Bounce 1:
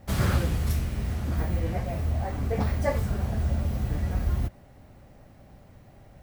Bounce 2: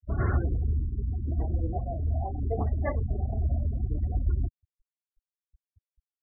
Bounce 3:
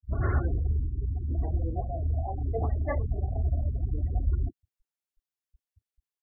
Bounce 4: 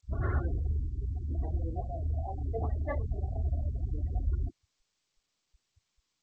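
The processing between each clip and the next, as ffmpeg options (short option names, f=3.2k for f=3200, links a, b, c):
-af "lowpass=3.2k,afftfilt=real='re*gte(hypot(re,im),0.0447)':imag='im*gte(hypot(re,im),0.0447)':win_size=1024:overlap=0.75,aecho=1:1:2.8:0.56,volume=-2.5dB"
-filter_complex "[0:a]acrossover=split=200[a][b];[b]adelay=30[c];[a][c]amix=inputs=2:normalize=0"
-af "volume=-4dB" -ar 16000 -c:a g722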